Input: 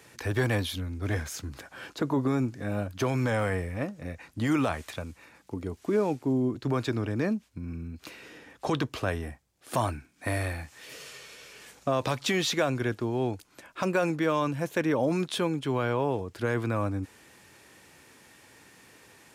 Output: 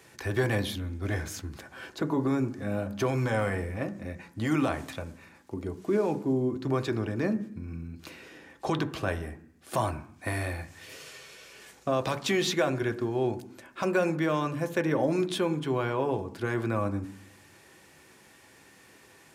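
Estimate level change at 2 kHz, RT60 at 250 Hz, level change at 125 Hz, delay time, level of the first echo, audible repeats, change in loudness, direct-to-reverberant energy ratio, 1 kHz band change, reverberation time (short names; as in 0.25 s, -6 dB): -0.5 dB, 0.90 s, -1.0 dB, none, none, none, -0.5 dB, 6.5 dB, -0.5 dB, 0.65 s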